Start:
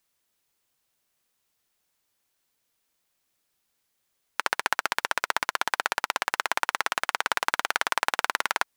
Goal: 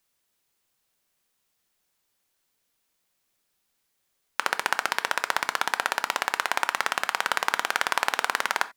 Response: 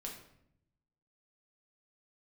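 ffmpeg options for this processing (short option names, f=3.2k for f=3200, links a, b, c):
-filter_complex "[0:a]asplit=2[a][b];[1:a]atrim=start_sample=2205,atrim=end_sample=4410[c];[b][c]afir=irnorm=-1:irlink=0,volume=-5dB[d];[a][d]amix=inputs=2:normalize=0,volume=-1.5dB"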